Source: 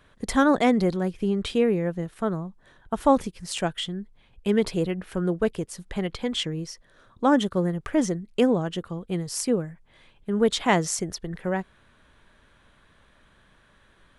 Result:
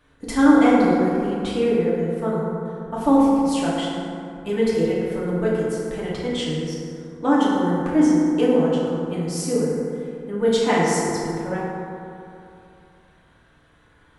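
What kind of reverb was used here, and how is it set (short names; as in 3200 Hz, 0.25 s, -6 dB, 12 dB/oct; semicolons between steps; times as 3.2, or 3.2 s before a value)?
FDN reverb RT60 2.7 s, high-frequency decay 0.4×, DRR -7.5 dB; gain -5.5 dB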